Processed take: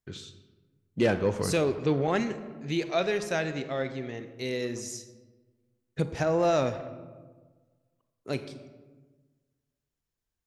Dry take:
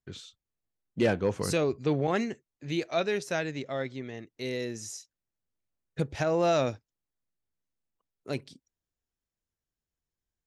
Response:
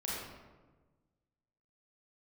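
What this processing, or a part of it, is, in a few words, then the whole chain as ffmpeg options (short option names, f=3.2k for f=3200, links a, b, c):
saturated reverb return: -filter_complex "[0:a]asplit=2[a][b];[1:a]atrim=start_sample=2205[c];[b][c]afir=irnorm=-1:irlink=0,asoftclip=type=tanh:threshold=-23dB,volume=-9.5dB[d];[a][d]amix=inputs=2:normalize=0,asettb=1/sr,asplit=3[e][f][g];[e]atrim=end=6.064[h];[f]atrim=start=6.06:end=6.73,asetpts=PTS-STARTPTS,afade=t=in:d=0.004:c=qsin,afade=t=out:st=0.666:d=0.004:c=qsin,equalizer=f=3.2k:w=1.1:g=-4[i];[g]atrim=start=6.726[j];[h][i]acrossfade=d=0.004:c1=hsin:c2=qsin[k];[k][j]acrossfade=d=0.004:c1=qsin:c2=hsin"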